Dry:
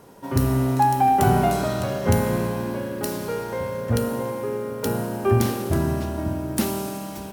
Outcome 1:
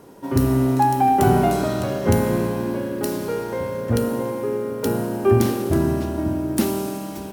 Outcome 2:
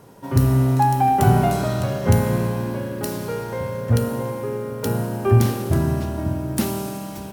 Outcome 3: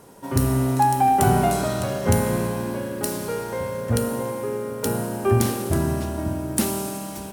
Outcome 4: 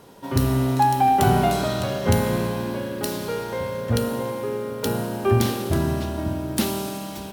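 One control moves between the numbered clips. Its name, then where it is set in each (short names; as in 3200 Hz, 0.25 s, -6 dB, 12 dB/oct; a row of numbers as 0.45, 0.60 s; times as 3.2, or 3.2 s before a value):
bell, frequency: 320, 120, 9100, 3600 Hz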